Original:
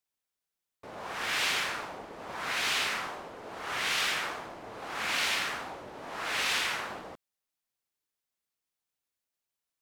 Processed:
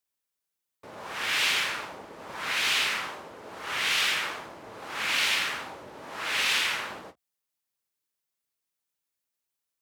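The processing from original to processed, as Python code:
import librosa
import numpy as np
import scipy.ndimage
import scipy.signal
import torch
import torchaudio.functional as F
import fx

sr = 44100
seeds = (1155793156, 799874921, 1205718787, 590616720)

y = fx.dynamic_eq(x, sr, hz=2800.0, q=0.98, threshold_db=-44.0, ratio=4.0, max_db=5)
y = scipy.signal.sosfilt(scipy.signal.butter(4, 57.0, 'highpass', fs=sr, output='sos'), y)
y = fx.high_shelf(y, sr, hz=7800.0, db=4.5)
y = fx.notch(y, sr, hz=720.0, q=15.0)
y = fx.end_taper(y, sr, db_per_s=430.0)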